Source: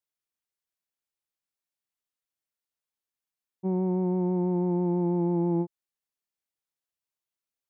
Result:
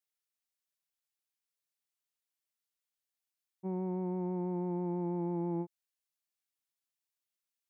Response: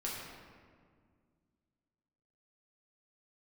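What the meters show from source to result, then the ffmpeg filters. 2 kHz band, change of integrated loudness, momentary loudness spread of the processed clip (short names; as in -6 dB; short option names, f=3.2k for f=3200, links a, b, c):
n/a, -9.0 dB, 5 LU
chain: -af "tiltshelf=f=1.2k:g=-5,volume=-4.5dB"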